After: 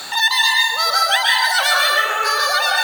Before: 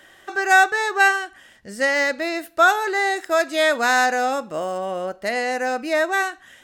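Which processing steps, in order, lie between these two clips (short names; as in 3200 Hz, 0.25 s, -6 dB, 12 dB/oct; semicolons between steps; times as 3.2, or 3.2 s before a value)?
transient shaper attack -11 dB, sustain +5 dB; speed mistake 33 rpm record played at 78 rpm; HPF 41 Hz; plate-style reverb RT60 1.2 s, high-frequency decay 0.55×, pre-delay 0.115 s, DRR -4 dB; three-band squash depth 70%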